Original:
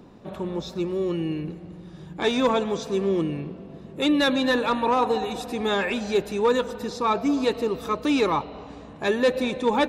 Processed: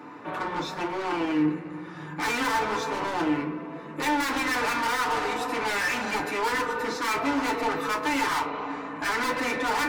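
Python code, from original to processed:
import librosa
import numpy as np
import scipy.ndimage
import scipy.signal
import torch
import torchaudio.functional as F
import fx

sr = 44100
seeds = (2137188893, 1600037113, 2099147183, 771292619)

y = np.minimum(x, 2.0 * 10.0 ** (-25.0 / 20.0) - x)
y = scipy.signal.sosfilt(scipy.signal.butter(2, 230.0, 'highpass', fs=sr, output='sos'), y)
y = fx.band_shelf(y, sr, hz=1500.0, db=12.0, octaves=1.7)
y = 10.0 ** (-29.0 / 20.0) * np.tanh(y / 10.0 ** (-29.0 / 20.0))
y = fx.rev_fdn(y, sr, rt60_s=0.34, lf_ratio=1.2, hf_ratio=0.55, size_ms=20.0, drr_db=-1.5)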